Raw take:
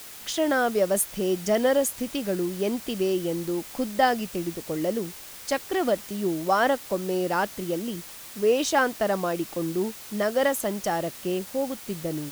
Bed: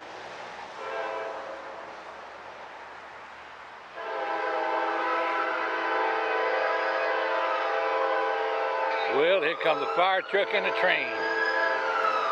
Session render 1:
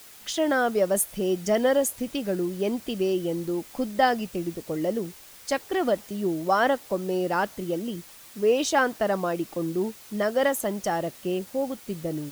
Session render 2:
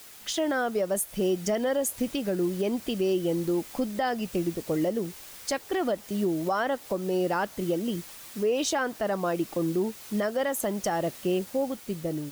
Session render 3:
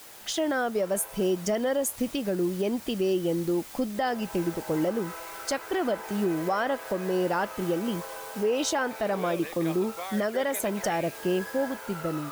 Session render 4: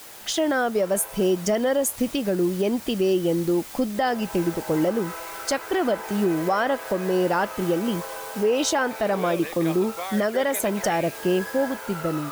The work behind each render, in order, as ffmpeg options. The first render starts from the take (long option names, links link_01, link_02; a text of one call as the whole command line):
ffmpeg -i in.wav -af "afftdn=noise_reduction=6:noise_floor=-42" out.wav
ffmpeg -i in.wav -af "dynaudnorm=framelen=170:gausssize=11:maxgain=3dB,alimiter=limit=-18dB:level=0:latency=1:release=231" out.wav
ffmpeg -i in.wav -i bed.wav -filter_complex "[1:a]volume=-14dB[link_01];[0:a][link_01]amix=inputs=2:normalize=0" out.wav
ffmpeg -i in.wav -af "volume=4.5dB" out.wav